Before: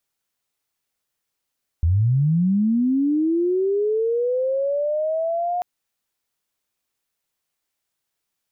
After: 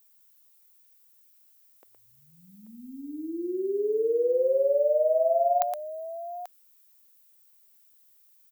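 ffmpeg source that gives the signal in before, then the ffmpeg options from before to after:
-f lavfi -i "aevalsrc='pow(10,(-14.5-6*t/3.79)/20)*sin(2*PI*(77*t+643*t*t/(2*3.79)))':duration=3.79:sample_rate=44100"
-filter_complex "[0:a]highpass=frequency=450:width=0.5412,highpass=frequency=450:width=1.3066,aemphasis=mode=production:type=bsi,asplit=2[link_01][link_02];[link_02]aecho=0:1:117|836:0.531|0.237[link_03];[link_01][link_03]amix=inputs=2:normalize=0"

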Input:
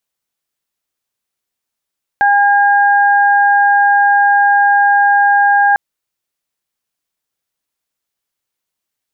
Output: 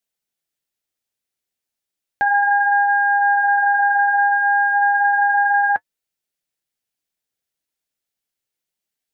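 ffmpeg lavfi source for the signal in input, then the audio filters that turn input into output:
-f lavfi -i "aevalsrc='0.355*sin(2*PI*810*t)+0.266*sin(2*PI*1620*t)':duration=3.55:sample_rate=44100"
-af "equalizer=frequency=1100:width=2.5:gain=-7,flanger=delay=4.4:depth=7.5:regen=-58:speed=0.33:shape=sinusoidal"

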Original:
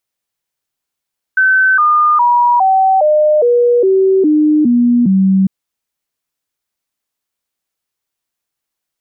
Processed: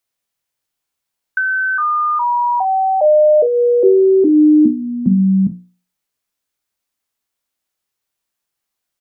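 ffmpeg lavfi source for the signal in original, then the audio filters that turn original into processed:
-f lavfi -i "aevalsrc='0.447*clip(min(mod(t,0.41),0.41-mod(t,0.41))/0.005,0,1)*sin(2*PI*1530*pow(2,-floor(t/0.41)/3)*mod(t,0.41))':duration=4.1:sample_rate=44100"
-filter_complex "[0:a]bandreject=frequency=60:width_type=h:width=6,bandreject=frequency=120:width_type=h:width=6,bandreject=frequency=180:width_type=h:width=6,bandreject=frequency=240:width_type=h:width=6,bandreject=frequency=300:width_type=h:width=6,bandreject=frequency=360:width_type=h:width=6,bandreject=frequency=420:width_type=h:width=6,bandreject=frequency=480:width_type=h:width=6,aecho=1:1:23|46:0.316|0.237,acrossover=split=240|550[link_01][link_02][link_03];[link_03]acompressor=threshold=-17dB:ratio=6[link_04];[link_01][link_02][link_04]amix=inputs=3:normalize=0"

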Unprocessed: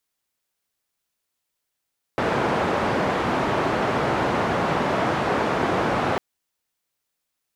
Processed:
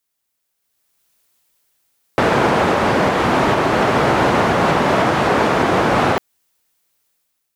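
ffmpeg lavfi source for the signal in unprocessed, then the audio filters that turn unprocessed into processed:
-f lavfi -i "anoisesrc=color=white:duration=4:sample_rate=44100:seed=1,highpass=frequency=100,lowpass=frequency=980,volume=-4.2dB"
-af "highshelf=frequency=8900:gain=6,dynaudnorm=framelen=590:gausssize=3:maxgain=14dB,alimiter=limit=-5.5dB:level=0:latency=1:release=254"

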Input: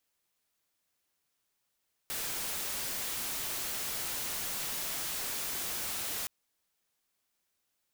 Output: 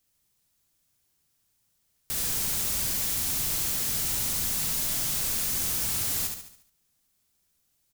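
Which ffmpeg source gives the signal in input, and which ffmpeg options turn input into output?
-f lavfi -i "anoisesrc=color=white:amplitude=0.0274:duration=4.17:sample_rate=44100:seed=1"
-filter_complex "[0:a]bass=frequency=250:gain=14,treble=frequency=4000:gain=7,asplit=2[link_01][link_02];[link_02]aecho=0:1:71|142|213|284|355|426:0.562|0.264|0.124|0.0584|0.0274|0.0129[link_03];[link_01][link_03]amix=inputs=2:normalize=0"

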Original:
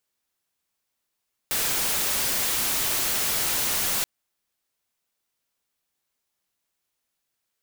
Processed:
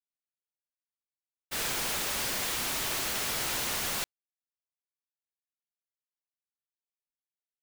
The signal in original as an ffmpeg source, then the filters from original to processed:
-f lavfi -i "anoisesrc=color=white:amplitude=0.0974:duration=2.53:sample_rate=44100:seed=1"
-af "highshelf=frequency=6100:gain=-7.5,agate=range=-33dB:threshold=-26dB:ratio=3:detection=peak"

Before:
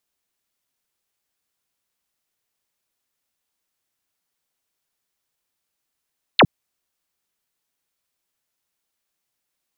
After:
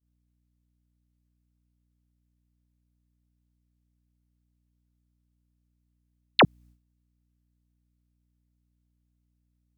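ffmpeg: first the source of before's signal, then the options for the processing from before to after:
-f lavfi -i "aevalsrc='0.398*clip(t/0.002,0,1)*clip((0.06-t)/0.002,0,1)*sin(2*PI*4600*0.06/log(99/4600)*(exp(log(99/4600)*t/0.06)-1))':duration=0.06:sample_rate=44100"
-af "aeval=exprs='val(0)+0.00141*(sin(2*PI*60*n/s)+sin(2*PI*2*60*n/s)/2+sin(2*PI*3*60*n/s)/3+sin(2*PI*4*60*n/s)/4+sin(2*PI*5*60*n/s)/5)':channel_layout=same,alimiter=limit=-12dB:level=0:latency=1:release=24,agate=range=-33dB:threshold=-48dB:ratio=3:detection=peak"

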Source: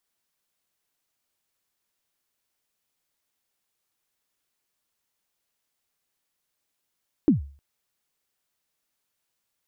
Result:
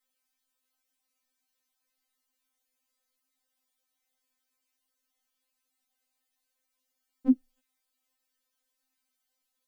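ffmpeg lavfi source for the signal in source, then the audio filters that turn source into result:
-f lavfi -i "aevalsrc='0.282*pow(10,-3*t/0.41)*sin(2*PI*(340*0.129/log(70/340)*(exp(log(70/340)*min(t,0.129)/0.129)-1)+70*max(t-0.129,0)))':duration=0.31:sample_rate=44100"
-af "afftfilt=real='re*3.46*eq(mod(b,12),0)':imag='im*3.46*eq(mod(b,12),0)':win_size=2048:overlap=0.75"

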